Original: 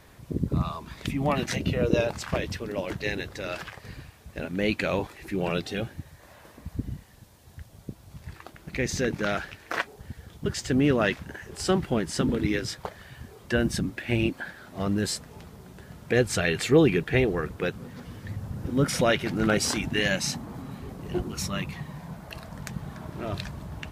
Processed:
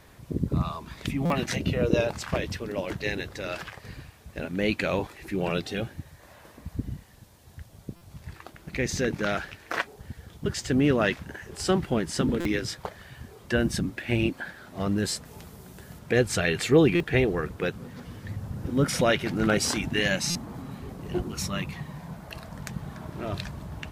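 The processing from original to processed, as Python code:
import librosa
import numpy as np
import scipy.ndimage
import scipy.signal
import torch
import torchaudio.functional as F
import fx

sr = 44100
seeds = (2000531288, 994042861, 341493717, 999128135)

y = fx.high_shelf(x, sr, hz=6700.0, db=10.0, at=(15.25, 15.99))
y = fx.buffer_glitch(y, sr, at_s=(1.25, 7.96, 12.4, 16.95, 20.3), block=256, repeats=8)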